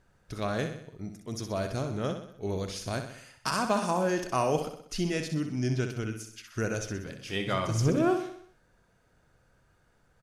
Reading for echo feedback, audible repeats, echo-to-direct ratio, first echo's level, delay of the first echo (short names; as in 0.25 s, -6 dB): 52%, 5, -6.5 dB, -8.0 dB, 63 ms